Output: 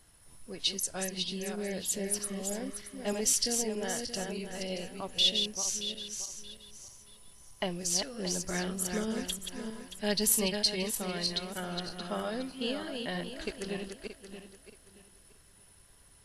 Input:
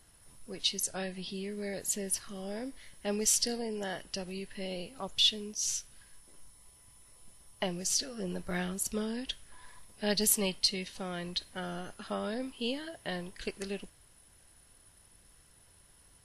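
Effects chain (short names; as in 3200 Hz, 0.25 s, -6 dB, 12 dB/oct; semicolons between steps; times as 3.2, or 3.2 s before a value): regenerating reverse delay 0.313 s, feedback 50%, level -5 dB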